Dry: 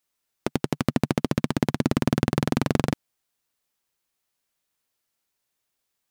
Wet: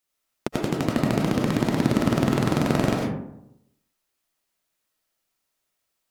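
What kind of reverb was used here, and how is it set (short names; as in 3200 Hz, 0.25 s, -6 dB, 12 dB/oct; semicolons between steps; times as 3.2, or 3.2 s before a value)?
digital reverb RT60 0.81 s, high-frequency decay 0.4×, pre-delay 60 ms, DRR -2 dB; gain -1.5 dB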